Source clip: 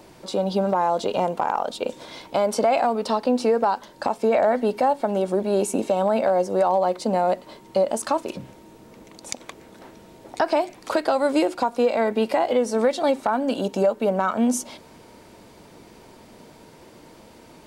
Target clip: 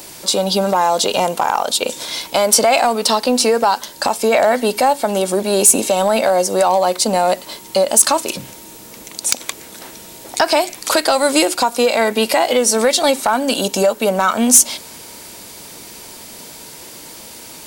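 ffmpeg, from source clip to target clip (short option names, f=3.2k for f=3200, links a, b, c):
-af "crystalizer=i=8:c=0,acontrast=27,volume=-1dB"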